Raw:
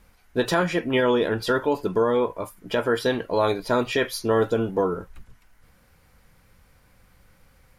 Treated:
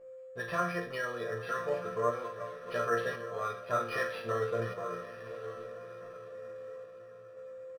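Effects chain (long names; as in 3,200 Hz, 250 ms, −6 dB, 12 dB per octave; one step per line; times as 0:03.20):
feedback delay that plays each chunk backwards 617 ms, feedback 41%, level −12.5 dB
high-pass filter 75 Hz
parametric band 1,400 Hz +11.5 dB 0.75 octaves
comb filter 1.7 ms, depth 91%
in parallel at −11 dB: bit reduction 5 bits
on the sum: steady tone 520 Hz −30 dBFS
resonators tuned to a chord A#2 major, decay 0.43 s
sample-and-hold tremolo 1.9 Hz
on a send: feedback delay with all-pass diffusion 1,085 ms, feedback 42%, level −14.5 dB
on the sum: linearly interpolated sample-rate reduction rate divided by 6×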